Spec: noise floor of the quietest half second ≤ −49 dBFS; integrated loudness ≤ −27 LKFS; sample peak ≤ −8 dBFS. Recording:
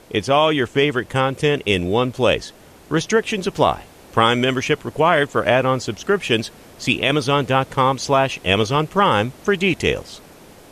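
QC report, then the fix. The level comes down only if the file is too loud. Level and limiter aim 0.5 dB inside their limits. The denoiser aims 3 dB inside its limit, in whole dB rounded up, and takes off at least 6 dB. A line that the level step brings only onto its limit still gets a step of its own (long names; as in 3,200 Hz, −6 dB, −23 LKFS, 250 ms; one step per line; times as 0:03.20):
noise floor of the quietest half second −44 dBFS: out of spec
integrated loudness −19.0 LKFS: out of spec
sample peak −2.0 dBFS: out of spec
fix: level −8.5 dB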